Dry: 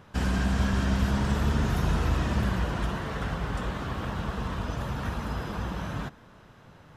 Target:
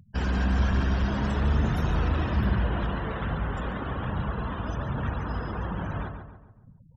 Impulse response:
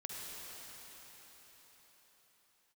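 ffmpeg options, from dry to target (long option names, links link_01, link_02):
-filter_complex "[0:a]afftfilt=real='re*gte(hypot(re,im),0.01)':imag='im*gte(hypot(re,im),0.01)':win_size=1024:overlap=0.75,aphaser=in_gain=1:out_gain=1:delay=4.3:decay=0.27:speed=1.2:type=triangular,asoftclip=type=tanh:threshold=-16dB,asplit=2[link_01][link_02];[link_02]adelay=140,lowpass=frequency=2100:poles=1,volume=-6.5dB,asplit=2[link_03][link_04];[link_04]adelay=140,lowpass=frequency=2100:poles=1,volume=0.46,asplit=2[link_05][link_06];[link_06]adelay=140,lowpass=frequency=2100:poles=1,volume=0.46,asplit=2[link_07][link_08];[link_08]adelay=140,lowpass=frequency=2100:poles=1,volume=0.46,asplit=2[link_09][link_10];[link_10]adelay=140,lowpass=frequency=2100:poles=1,volume=0.46[link_11];[link_03][link_05][link_07][link_09][link_11]amix=inputs=5:normalize=0[link_12];[link_01][link_12]amix=inputs=2:normalize=0"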